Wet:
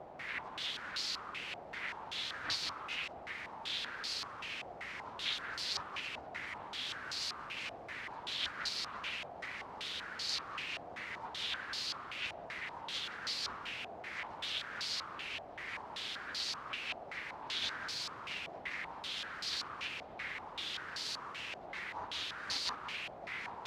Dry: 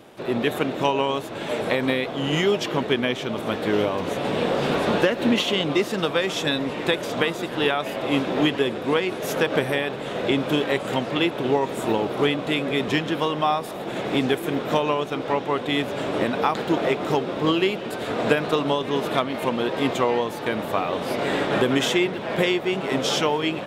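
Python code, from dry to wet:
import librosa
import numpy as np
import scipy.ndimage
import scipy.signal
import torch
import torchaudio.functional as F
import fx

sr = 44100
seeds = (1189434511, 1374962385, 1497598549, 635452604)

p1 = fx.tube_stage(x, sr, drive_db=26.0, bias=0.7)
p2 = fx.spec_gate(p1, sr, threshold_db=-30, keep='weak')
p3 = fx.quant_dither(p2, sr, seeds[0], bits=6, dither='triangular')
p4 = p2 + (p3 * librosa.db_to_amplitude(-7.5))
p5 = scipy.signal.sosfilt(scipy.signal.butter(2, 53.0, 'highpass', fs=sr, output='sos'), p4)
p6 = p5 + fx.echo_single(p5, sr, ms=180, db=-4.5, dry=0)
y = fx.filter_held_lowpass(p6, sr, hz=5.2, low_hz=710.0, high_hz=4500.0)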